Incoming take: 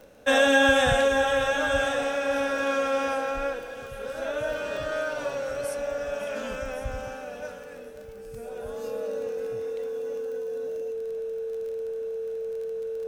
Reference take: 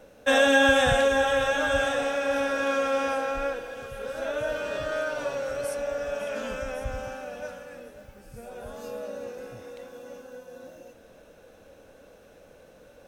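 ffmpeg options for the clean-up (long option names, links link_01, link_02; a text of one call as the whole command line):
ffmpeg -i in.wav -af "adeclick=threshold=4,bandreject=frequency=450:width=30" out.wav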